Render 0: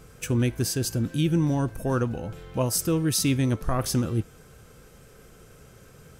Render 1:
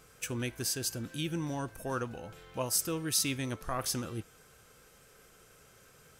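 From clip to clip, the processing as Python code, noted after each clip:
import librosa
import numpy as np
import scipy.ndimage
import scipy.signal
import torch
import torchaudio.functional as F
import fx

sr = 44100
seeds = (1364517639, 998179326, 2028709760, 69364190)

y = fx.low_shelf(x, sr, hz=470.0, db=-12.0)
y = y * librosa.db_to_amplitude(-3.0)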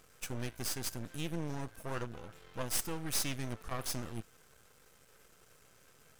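y = np.maximum(x, 0.0)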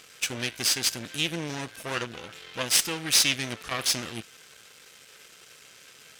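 y = fx.weighting(x, sr, curve='D')
y = y * librosa.db_to_amplitude(7.0)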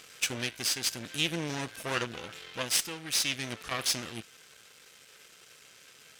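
y = fx.rider(x, sr, range_db=4, speed_s=0.5)
y = y * librosa.db_to_amplitude(-4.5)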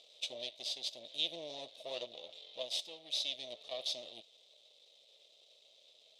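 y = fx.double_bandpass(x, sr, hz=1500.0, octaves=2.6)
y = y * librosa.db_to_amplitude(2.0)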